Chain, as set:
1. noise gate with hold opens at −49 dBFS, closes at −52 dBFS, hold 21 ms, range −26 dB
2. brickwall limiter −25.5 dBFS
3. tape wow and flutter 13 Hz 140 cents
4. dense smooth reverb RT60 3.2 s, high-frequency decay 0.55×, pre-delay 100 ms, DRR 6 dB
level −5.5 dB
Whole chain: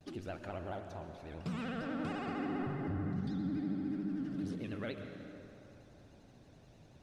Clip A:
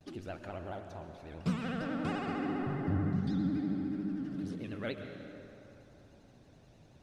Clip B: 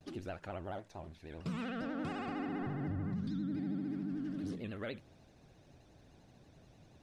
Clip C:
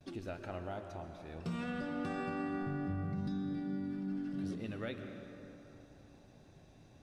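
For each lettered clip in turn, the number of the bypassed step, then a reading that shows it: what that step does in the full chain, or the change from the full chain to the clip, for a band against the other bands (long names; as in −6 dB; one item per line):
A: 2, change in crest factor +2.5 dB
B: 4, change in momentary loudness spread −7 LU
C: 3, change in momentary loudness spread +1 LU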